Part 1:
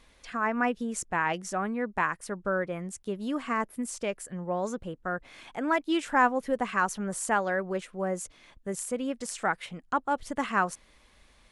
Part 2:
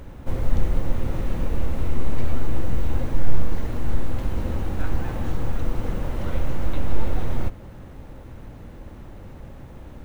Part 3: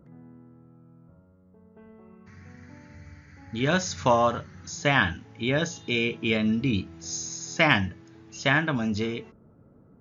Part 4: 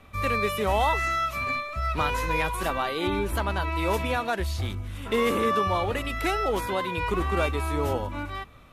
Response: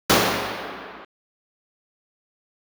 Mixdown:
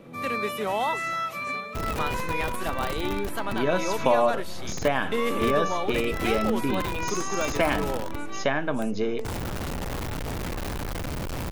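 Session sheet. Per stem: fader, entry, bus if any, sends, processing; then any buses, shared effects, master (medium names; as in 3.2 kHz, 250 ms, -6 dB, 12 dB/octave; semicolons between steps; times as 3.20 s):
-8.0 dB, 0.00 s, no send, compression 3:1, threshold -41 dBFS, peak gain reduction 17.5 dB
-15.0 dB, 1.75 s, no send, one-bit comparator
+1.5 dB, 0.00 s, no send, high-pass 120 Hz; compression 2:1, threshold -38 dBFS, peak gain reduction 12.5 dB; peaking EQ 550 Hz +12 dB 1.9 oct
-2.5 dB, 0.00 s, no send, high-pass 140 Hz 24 dB/octave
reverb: none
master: none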